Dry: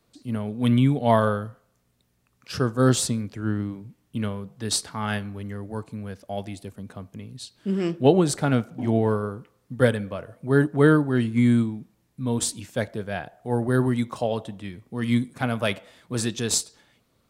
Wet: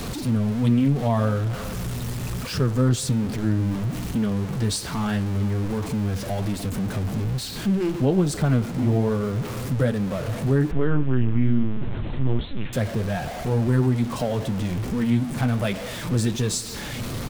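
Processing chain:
converter with a step at zero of −26 dBFS
0:10.71–0:12.73: linear-prediction vocoder at 8 kHz pitch kept
floating-point word with a short mantissa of 8 bits
flanger 1.2 Hz, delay 3.7 ms, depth 5.5 ms, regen −45%
downward compressor 1.5 to 1, threshold −30 dBFS, peak gain reduction 6.5 dB
low-shelf EQ 240 Hz +10.5 dB
slap from a distant wall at 74 metres, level −22 dB
boost into a limiter +10.5 dB
highs frequency-modulated by the lows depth 0.17 ms
level −9 dB

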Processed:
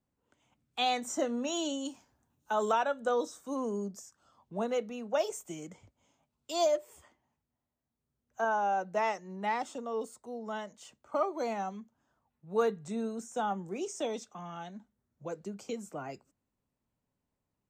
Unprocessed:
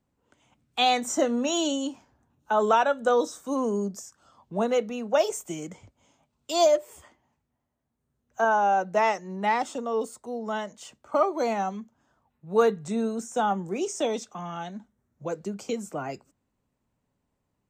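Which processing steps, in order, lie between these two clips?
0:01.85–0:02.72: high-shelf EQ 4,000 Hz +11 dB
level −7.5 dB

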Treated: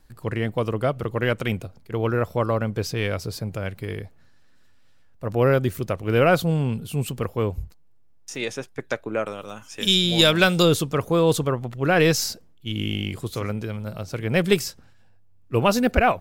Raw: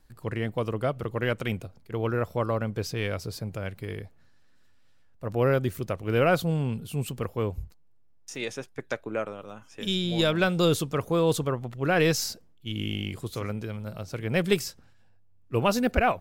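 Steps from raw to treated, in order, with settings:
0:09.26–0:10.63: high-shelf EQ 2,500 Hz +10.5 dB
level +4.5 dB

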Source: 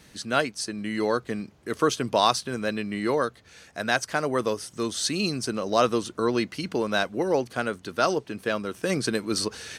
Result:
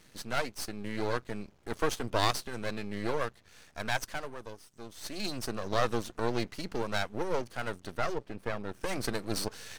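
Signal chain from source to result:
half-wave rectification
0:04.07–0:05.29: duck −11.5 dB, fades 0.28 s
0:07.97–0:08.81: high-shelf EQ 3,000 Hz −8.5 dB
level −2.5 dB

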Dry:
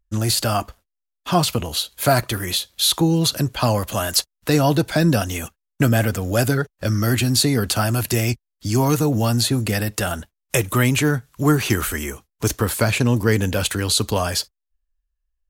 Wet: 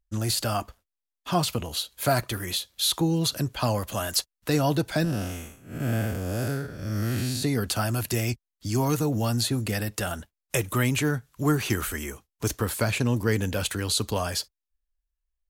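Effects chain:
0:05.04–0:07.43: spectrum smeared in time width 216 ms
level −6.5 dB

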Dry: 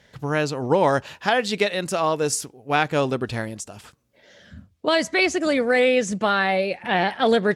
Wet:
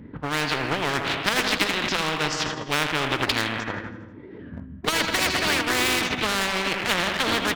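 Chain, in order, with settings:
low-pass that shuts in the quiet parts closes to 450 Hz, open at −19 dBFS
low-shelf EQ 77 Hz −10.5 dB
treble cut that deepens with the level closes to 1,300 Hz, closed at −18.5 dBFS
formants moved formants −5 semitones
low-pass filter 3,200 Hz 12 dB per octave
flat-topped bell 530 Hz −13 dB 1.3 octaves
repeating echo 81 ms, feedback 58%, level −13 dB
on a send at −14.5 dB: convolution reverb, pre-delay 4 ms
on the sum: formants moved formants +5 semitones
in parallel at −5 dB: dead-zone distortion −37.5 dBFS
on the sum: every bin compressed towards the loudest bin 4 to 1

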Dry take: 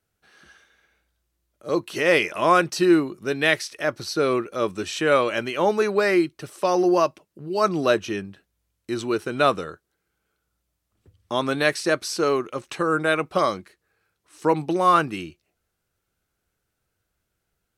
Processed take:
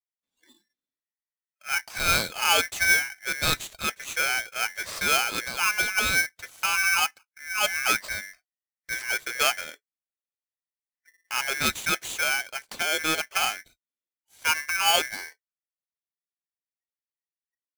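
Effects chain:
noise reduction from a noise print of the clip's start 29 dB
ring modulator with a square carrier 1,900 Hz
level −4.5 dB

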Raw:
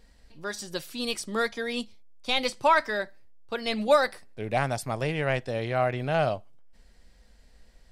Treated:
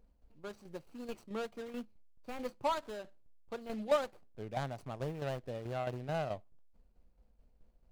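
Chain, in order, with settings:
running median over 25 samples
shaped tremolo saw down 4.6 Hz, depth 60%
level −7 dB

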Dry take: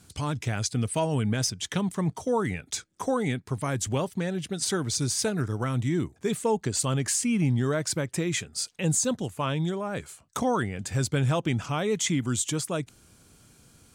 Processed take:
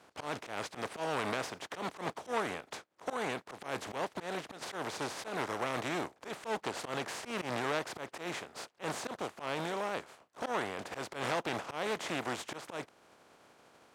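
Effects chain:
compressing power law on the bin magnitudes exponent 0.34
in parallel at −2 dB: downward compressor, threshold −38 dBFS, peak gain reduction 17 dB
on the sum: resonant band-pass 650 Hz, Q 0.85
volume swells 118 ms
saturating transformer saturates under 2,100 Hz

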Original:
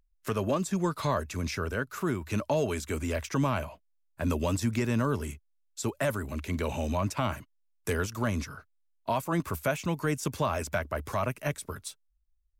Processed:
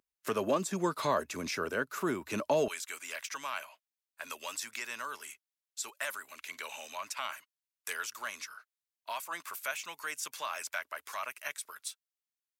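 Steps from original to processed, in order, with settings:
high-pass filter 270 Hz 12 dB per octave, from 0:02.68 1,400 Hz

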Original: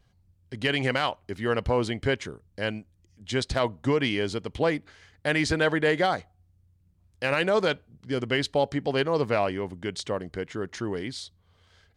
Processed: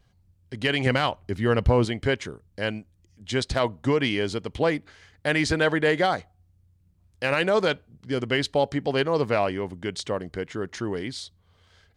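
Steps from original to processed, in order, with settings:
0:00.86–0:01.85: low-shelf EQ 230 Hz +9 dB
level +1.5 dB

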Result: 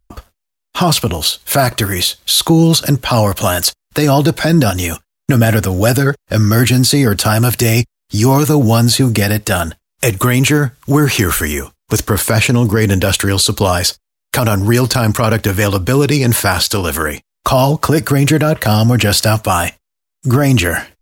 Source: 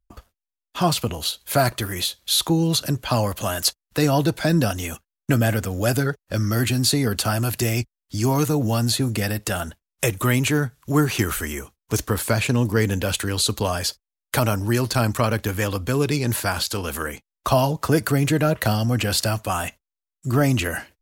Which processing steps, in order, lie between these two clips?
boost into a limiter +12 dB
level −1 dB

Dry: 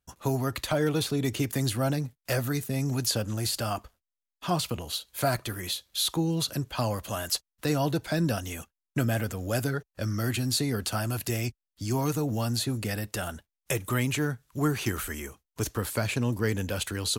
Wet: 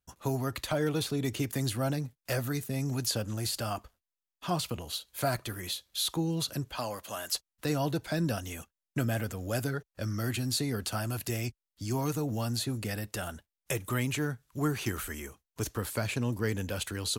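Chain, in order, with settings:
0:06.78–0:07.34: high-pass filter 420 Hz 6 dB per octave
level −3.5 dB

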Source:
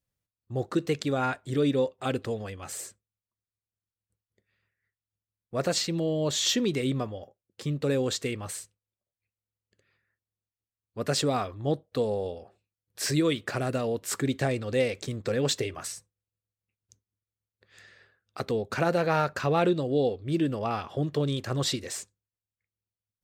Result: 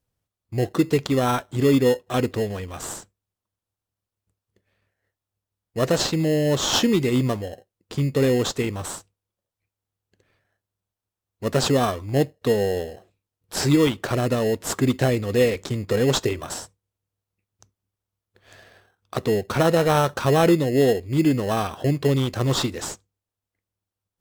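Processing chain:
in parallel at −3.5 dB: decimation without filtering 18×
on the sum: wrong playback speed 25 fps video run at 24 fps
level +3 dB

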